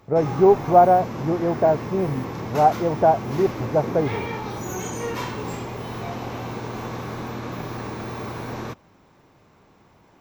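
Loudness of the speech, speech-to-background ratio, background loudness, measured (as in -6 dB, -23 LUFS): -20.0 LUFS, 11.0 dB, -31.0 LUFS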